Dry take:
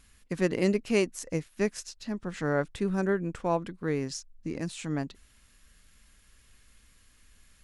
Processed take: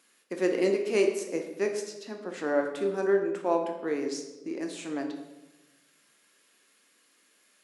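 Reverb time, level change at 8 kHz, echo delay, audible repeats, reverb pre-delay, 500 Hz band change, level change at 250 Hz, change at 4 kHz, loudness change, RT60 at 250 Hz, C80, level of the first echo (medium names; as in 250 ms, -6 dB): 1.1 s, -1.5 dB, no echo, no echo, 5 ms, +3.5 dB, -1.5 dB, -1.0 dB, +1.0 dB, 1.4 s, 9.0 dB, no echo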